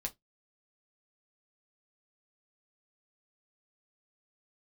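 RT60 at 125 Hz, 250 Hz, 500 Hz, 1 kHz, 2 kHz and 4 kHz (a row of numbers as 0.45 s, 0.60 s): 0.20 s, 0.20 s, 0.15 s, 0.10 s, 0.15 s, 0.15 s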